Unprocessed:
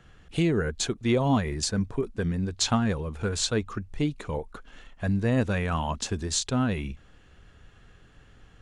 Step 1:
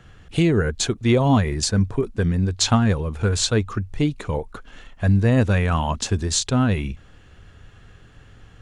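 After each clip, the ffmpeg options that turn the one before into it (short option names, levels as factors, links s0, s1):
-af "equalizer=f=100:t=o:w=0.53:g=6,volume=1.88"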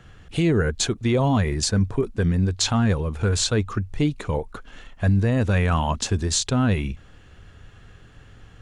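-af "alimiter=limit=0.251:level=0:latency=1:release=20"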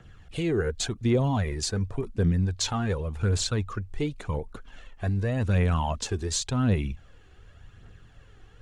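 -filter_complex "[0:a]acrossover=split=720|2000[s0][s1][s2];[s0]crystalizer=i=9:c=0[s3];[s3][s1][s2]amix=inputs=3:normalize=0,aphaser=in_gain=1:out_gain=1:delay=2.8:decay=0.45:speed=0.89:type=triangular,volume=0.447"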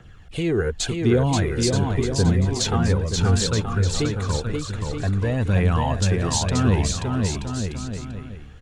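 -af "aecho=1:1:530|927.5|1226|1449|1617:0.631|0.398|0.251|0.158|0.1,volume=1.58"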